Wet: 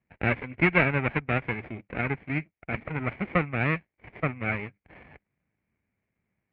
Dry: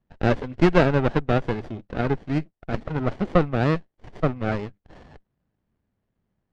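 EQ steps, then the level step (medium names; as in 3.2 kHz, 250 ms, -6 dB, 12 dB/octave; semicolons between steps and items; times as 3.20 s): high-pass 57 Hz; dynamic bell 460 Hz, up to -5 dB, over -30 dBFS, Q 0.77; four-pole ladder low-pass 2.4 kHz, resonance 80%; +8.0 dB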